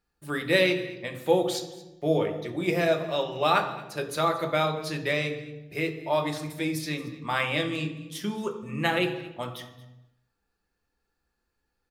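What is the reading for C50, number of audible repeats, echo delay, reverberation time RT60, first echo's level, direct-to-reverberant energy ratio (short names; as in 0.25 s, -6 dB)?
9.5 dB, 1, 0.225 s, 1.0 s, -19.5 dB, 3.5 dB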